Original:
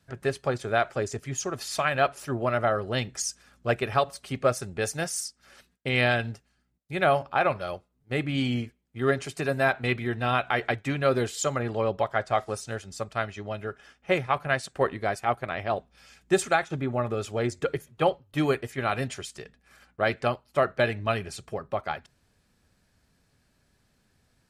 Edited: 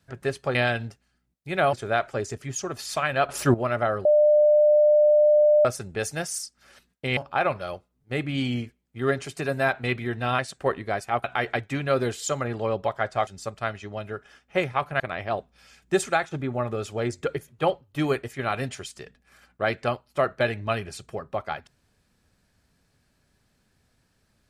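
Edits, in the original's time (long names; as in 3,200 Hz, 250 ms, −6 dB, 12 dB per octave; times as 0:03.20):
0:02.11–0:02.36: clip gain +11 dB
0:02.87–0:04.47: beep over 599 Hz −14 dBFS
0:05.99–0:07.17: move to 0:00.55
0:12.42–0:12.81: remove
0:14.54–0:15.39: move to 0:10.39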